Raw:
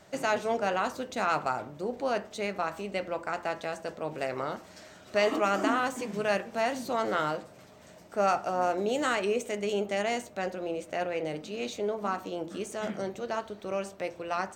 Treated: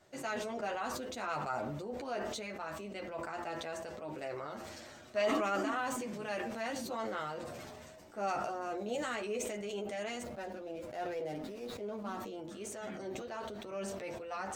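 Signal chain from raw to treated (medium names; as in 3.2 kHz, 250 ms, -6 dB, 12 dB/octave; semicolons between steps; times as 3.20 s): 10.22–12.20 s: median filter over 15 samples; chorus voices 6, 0.15 Hz, delay 11 ms, depth 3.2 ms; decay stretcher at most 22 dB/s; trim -7 dB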